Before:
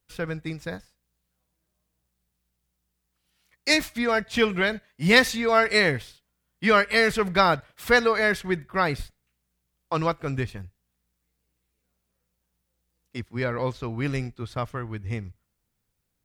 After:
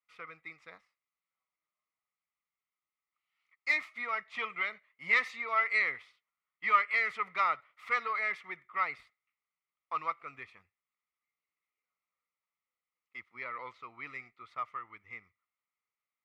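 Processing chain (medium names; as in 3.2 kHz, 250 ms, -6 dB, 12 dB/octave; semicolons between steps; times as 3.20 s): single-diode clipper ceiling -15 dBFS; wow and flutter 29 cents; two resonant band-passes 1.6 kHz, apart 0.73 oct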